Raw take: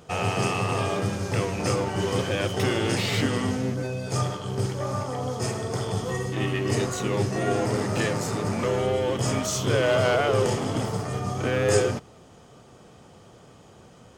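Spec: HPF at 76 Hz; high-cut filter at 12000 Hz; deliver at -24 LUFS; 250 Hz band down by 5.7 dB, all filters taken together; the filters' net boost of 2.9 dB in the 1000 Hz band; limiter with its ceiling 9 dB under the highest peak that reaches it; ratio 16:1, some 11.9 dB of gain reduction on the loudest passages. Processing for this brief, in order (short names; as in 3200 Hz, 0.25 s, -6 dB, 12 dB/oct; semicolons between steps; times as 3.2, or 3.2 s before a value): HPF 76 Hz; LPF 12000 Hz; bell 250 Hz -8.5 dB; bell 1000 Hz +4.5 dB; compressor 16:1, threshold -29 dBFS; gain +12 dB; limiter -15 dBFS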